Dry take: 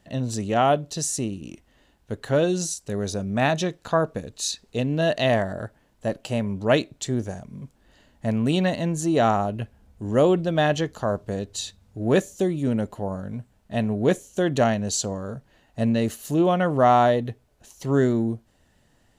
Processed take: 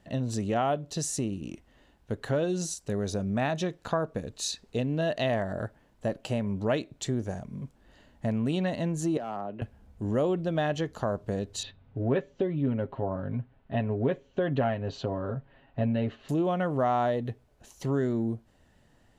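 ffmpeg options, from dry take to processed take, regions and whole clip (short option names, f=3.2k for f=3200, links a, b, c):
-filter_complex "[0:a]asettb=1/sr,asplit=3[a][b][c];[a]atrim=end=9.174[d];[b]atrim=start=9.17:end=9.62,asetpts=PTS-STARTPTS,afade=t=in:d=0.004:c=qsin,afade=t=out:st=0.446:d=0.004:c=qsin,acrossover=split=160 3300:gain=0.224 1 0.0631[e][f][g];[e][f][g]amix=inputs=3:normalize=0,asoftclip=type=hard:threshold=-13.5dB,acrossover=split=230|2200[h][i][j];[h]acompressor=threshold=-47dB:ratio=4[k];[i]acompressor=threshold=-32dB:ratio=4[l];[j]acompressor=threshold=-53dB:ratio=4[m];[k][l][m]amix=inputs=3:normalize=0[n];[c]atrim=start=9.616[o];[d][n]acrossfade=d=0.004:c1=hsin:c2=qsin[p];[p][o]acrossfade=d=0.004:c1=qsin:c2=hsin,asettb=1/sr,asplit=3[q][r][s];[q]atrim=end=11.634[t];[r]atrim=start=11.63:end=16.29,asetpts=PTS-STARTPTS,afade=t=in:d=0.004:c=qsin,afade=t=out:st=4.656:d=0.004:c=qsin,lowpass=f=3.3k:w=0.5412,lowpass=f=3.3k:w=1.3066,aecho=1:1:7.4:0.59,atrim=end_sample=205506[u];[s]atrim=start=16.286[v];[t][u]acrossfade=d=0.004:c1=hsin:c2=qsin[w];[w][v]acrossfade=d=0.004:c1=qsin:c2=hsin,highshelf=f=3.7k:g=-6.5,acompressor=threshold=-27dB:ratio=2.5"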